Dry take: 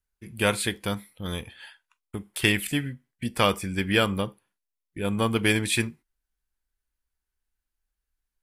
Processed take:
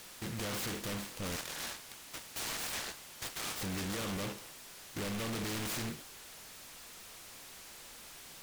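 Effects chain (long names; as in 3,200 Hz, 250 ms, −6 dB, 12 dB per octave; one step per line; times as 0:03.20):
compressor on every frequency bin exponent 0.6
0:01.36–0:03.61: inverse Chebyshev high-pass filter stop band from 700 Hz, stop band 40 dB
brickwall limiter −15 dBFS, peak gain reduction 10.5 dB
hard clipping −31 dBFS, distortion −5 dB
steady tone 3,900 Hz −44 dBFS
short delay modulated by noise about 1,900 Hz, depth 0.14 ms
level −4.5 dB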